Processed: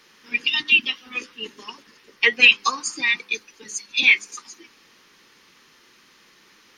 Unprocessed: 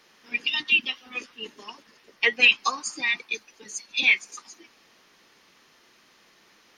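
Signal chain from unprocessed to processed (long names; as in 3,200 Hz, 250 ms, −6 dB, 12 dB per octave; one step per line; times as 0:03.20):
parametric band 680 Hz −9.5 dB 0.5 octaves
hum removal 100.5 Hz, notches 7
level +4.5 dB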